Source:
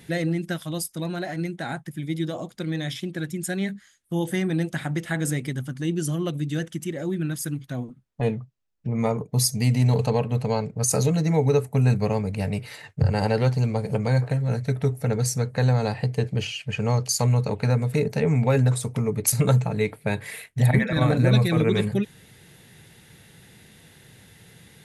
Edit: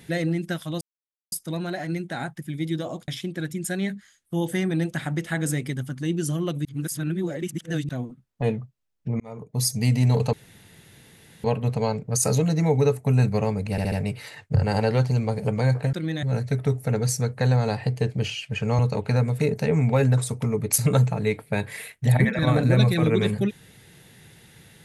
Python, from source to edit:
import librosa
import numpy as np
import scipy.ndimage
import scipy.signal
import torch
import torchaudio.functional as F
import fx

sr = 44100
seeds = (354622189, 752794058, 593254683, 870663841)

y = fx.edit(x, sr, fx.insert_silence(at_s=0.81, length_s=0.51),
    fx.move(start_s=2.57, length_s=0.3, to_s=14.4),
    fx.reverse_span(start_s=6.44, length_s=1.24),
    fx.fade_in_span(start_s=8.99, length_s=0.57),
    fx.insert_room_tone(at_s=10.12, length_s=1.11),
    fx.stutter(start_s=12.39, slice_s=0.07, count=4),
    fx.cut(start_s=16.96, length_s=0.37), tone=tone)